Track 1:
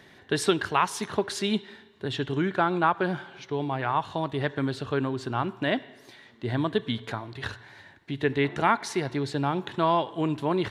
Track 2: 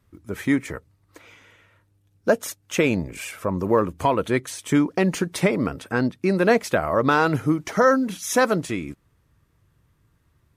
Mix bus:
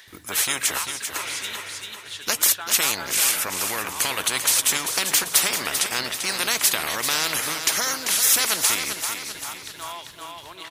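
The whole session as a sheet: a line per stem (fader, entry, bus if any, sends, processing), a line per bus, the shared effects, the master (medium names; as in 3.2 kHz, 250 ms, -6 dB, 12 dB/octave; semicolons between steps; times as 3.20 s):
-2.5 dB, 0.00 s, no send, echo send -15 dB, tilt shelf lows -10 dB, about 790 Hz; auto duck -12 dB, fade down 0.30 s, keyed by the second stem
-0.5 dB, 0.00 s, no send, echo send -8 dB, gate with hold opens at -53 dBFS; spectrum-flattening compressor 4:1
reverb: none
echo: feedback delay 392 ms, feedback 48%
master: tilt EQ +2.5 dB/octave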